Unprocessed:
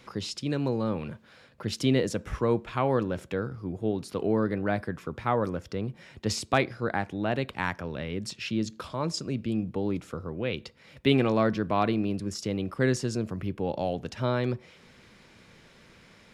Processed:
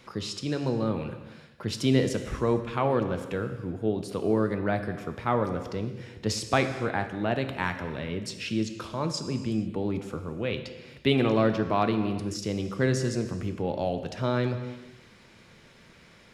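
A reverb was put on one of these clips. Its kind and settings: gated-style reverb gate 500 ms falling, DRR 7.5 dB

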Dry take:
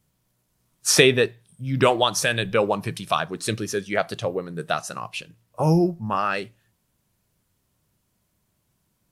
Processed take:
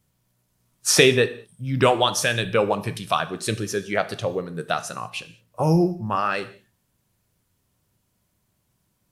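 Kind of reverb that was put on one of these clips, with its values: gated-style reverb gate 230 ms falling, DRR 11 dB

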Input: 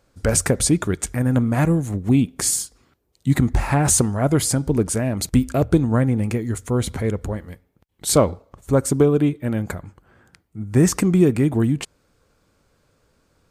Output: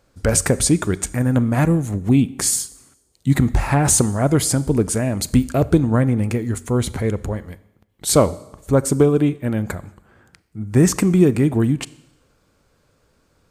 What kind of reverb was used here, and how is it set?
Schroeder reverb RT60 0.92 s, combs from 29 ms, DRR 18.5 dB; trim +1.5 dB

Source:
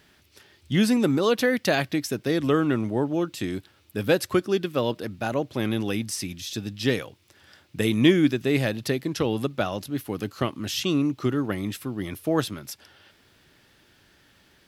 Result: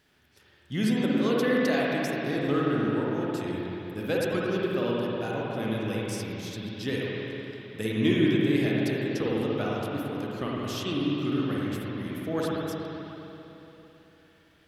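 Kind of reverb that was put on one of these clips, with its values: spring tank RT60 3.4 s, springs 51/55 ms, chirp 75 ms, DRR -5 dB; trim -9 dB

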